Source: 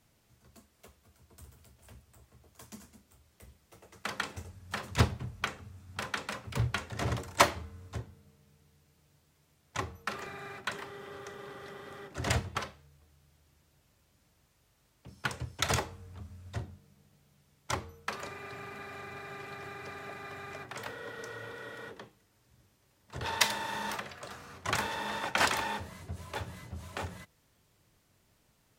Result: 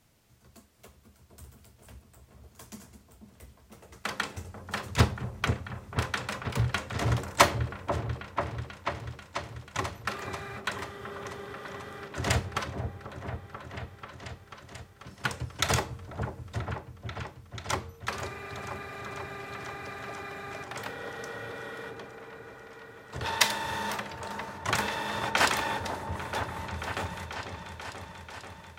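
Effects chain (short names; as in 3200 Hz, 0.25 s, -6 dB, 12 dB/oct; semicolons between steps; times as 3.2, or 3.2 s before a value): repeats that get brighter 0.489 s, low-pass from 750 Hz, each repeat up 1 oct, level -6 dB; gain +3 dB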